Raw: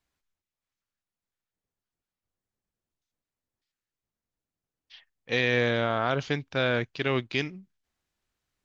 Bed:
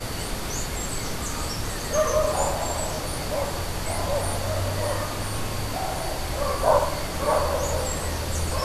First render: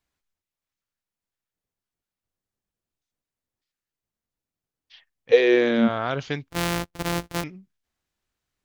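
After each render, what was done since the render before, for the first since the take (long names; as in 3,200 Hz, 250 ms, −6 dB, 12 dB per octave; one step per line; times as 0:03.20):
0:05.31–0:05.87: high-pass with resonance 480 Hz → 220 Hz, resonance Q 9.3
0:06.50–0:07.44: samples sorted by size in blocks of 256 samples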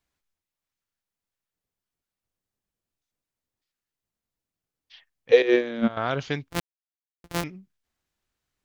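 0:05.42–0:05.97: noise gate −18 dBFS, range −11 dB
0:06.60–0:07.24: silence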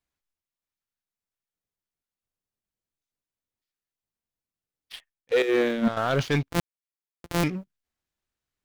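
reversed playback
downward compressor 20 to 1, threshold −28 dBFS, peak gain reduction 19.5 dB
reversed playback
leveller curve on the samples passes 3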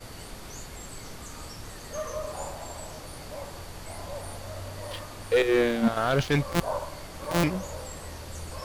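mix in bed −12 dB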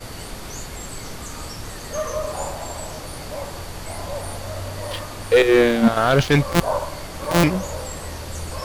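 level +8 dB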